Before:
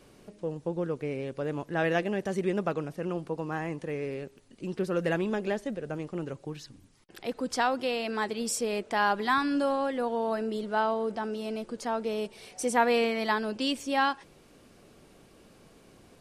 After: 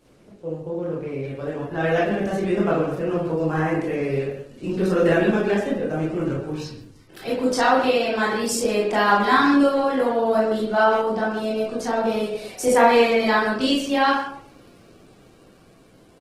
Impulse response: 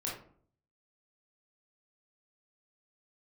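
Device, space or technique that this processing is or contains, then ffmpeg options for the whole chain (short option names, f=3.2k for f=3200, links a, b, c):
speakerphone in a meeting room: -filter_complex "[1:a]atrim=start_sample=2205[a];[0:a][a]afir=irnorm=-1:irlink=0,asplit=2[b][c];[c]adelay=120,highpass=300,lowpass=3.4k,asoftclip=type=hard:threshold=-18.5dB,volume=-8dB[d];[b][d]amix=inputs=2:normalize=0,dynaudnorm=f=440:g=11:m=7.5dB" -ar 48000 -c:a libopus -b:a 16k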